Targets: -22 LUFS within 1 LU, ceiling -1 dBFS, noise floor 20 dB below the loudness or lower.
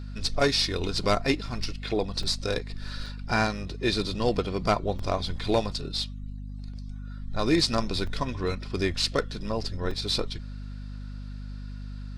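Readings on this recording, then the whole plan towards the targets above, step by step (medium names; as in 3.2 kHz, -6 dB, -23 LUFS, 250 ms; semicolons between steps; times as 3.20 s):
dropouts 6; longest dropout 3.8 ms; hum 50 Hz; highest harmonic 250 Hz; hum level -35 dBFS; loudness -28.0 LUFS; peak level -12.0 dBFS; loudness target -22.0 LUFS
-> interpolate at 1.63/2.23/3.06/4.99/8.07/9.91 s, 3.8 ms; de-hum 50 Hz, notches 5; trim +6 dB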